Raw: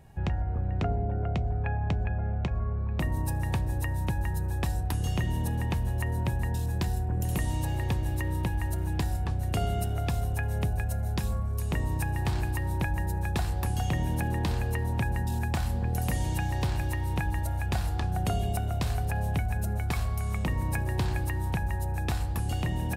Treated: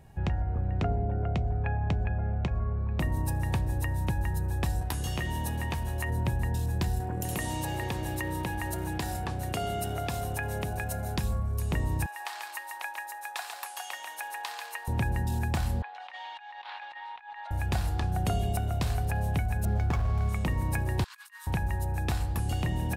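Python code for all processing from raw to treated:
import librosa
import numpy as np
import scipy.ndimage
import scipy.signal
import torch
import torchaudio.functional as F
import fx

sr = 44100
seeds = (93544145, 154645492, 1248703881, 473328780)

y = fx.chain(x, sr, fx.low_shelf(hz=390.0, db=-8.0),
    fx.doubler(ms=14.0, db=-7),
    fx.env_flatten(amount_pct=70), at=(4.81, 6.1))
y = fx.chain(y, sr, fx.highpass(hz=280.0, slope=6),
    fx.env_flatten(amount_pct=70), at=(7.0, 11.18))
y = fx.chain(y, sr, fx.highpass(hz=780.0, slope=24),
    fx.echo_single(ms=141, db=-5.0), at=(12.06, 14.88))
y = fx.chain(y, sr, fx.ellip_bandpass(low_hz=820.0, high_hz=3700.0, order=3, stop_db=80),
    fx.over_compress(threshold_db=-42.0, ratio=-0.5), at=(15.82, 17.51))
y = fx.chain(y, sr, fx.median_filter(points=15),
    fx.high_shelf(hz=7900.0, db=-7.5),
    fx.env_flatten(amount_pct=100), at=(19.65, 20.29))
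y = fx.chain(y, sr, fx.cheby_ripple_highpass(hz=1000.0, ripple_db=3),
    fx.over_compress(threshold_db=-49.0, ratio=-0.5), at=(21.04, 21.47))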